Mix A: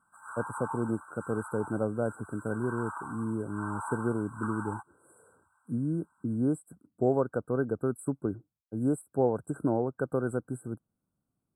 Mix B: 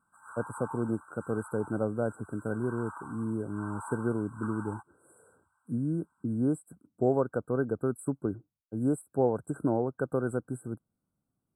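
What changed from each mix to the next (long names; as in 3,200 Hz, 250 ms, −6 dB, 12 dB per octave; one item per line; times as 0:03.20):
background −4.5 dB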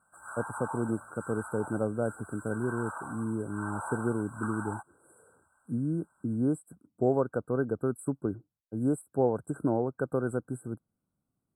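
background: remove four-pole ladder high-pass 830 Hz, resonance 50%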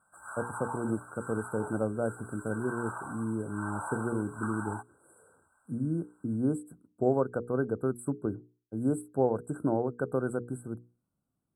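speech: add mains-hum notches 60/120/180/240/300/360/420/480 Hz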